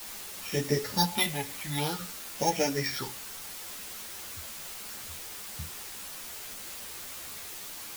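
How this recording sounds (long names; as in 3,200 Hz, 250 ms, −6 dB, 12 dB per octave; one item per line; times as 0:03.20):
a buzz of ramps at a fixed pitch in blocks of 8 samples
phaser sweep stages 6, 0.5 Hz, lowest notch 360–1,200 Hz
a quantiser's noise floor 8 bits, dither triangular
a shimmering, thickened sound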